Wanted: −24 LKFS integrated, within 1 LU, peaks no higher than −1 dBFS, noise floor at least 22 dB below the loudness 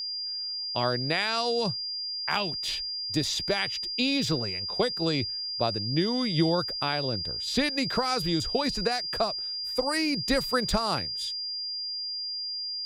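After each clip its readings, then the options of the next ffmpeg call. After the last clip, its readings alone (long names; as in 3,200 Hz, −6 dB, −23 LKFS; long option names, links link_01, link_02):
interfering tone 4,800 Hz; level of the tone −31 dBFS; integrated loudness −27.5 LKFS; sample peak −12.5 dBFS; target loudness −24.0 LKFS
→ -af "bandreject=frequency=4800:width=30"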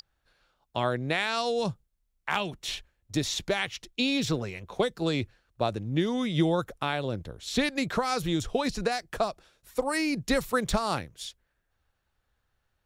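interfering tone none found; integrated loudness −29.5 LKFS; sample peak −13.5 dBFS; target loudness −24.0 LKFS
→ -af "volume=5.5dB"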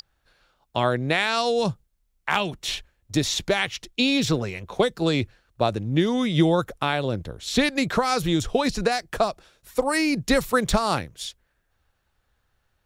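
integrated loudness −24.0 LKFS; sample peak −8.0 dBFS; background noise floor −72 dBFS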